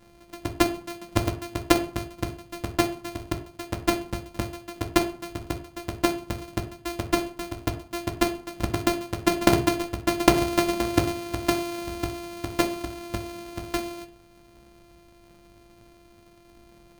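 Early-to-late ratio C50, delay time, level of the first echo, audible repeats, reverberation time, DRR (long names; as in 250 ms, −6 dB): 12.5 dB, no echo audible, no echo audible, no echo audible, 0.50 s, 6.0 dB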